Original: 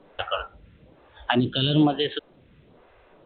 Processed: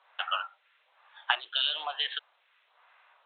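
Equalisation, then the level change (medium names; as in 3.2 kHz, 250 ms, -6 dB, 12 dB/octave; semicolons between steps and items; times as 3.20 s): inverse Chebyshev high-pass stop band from 270 Hz, stop band 60 dB; distance through air 52 m; 0.0 dB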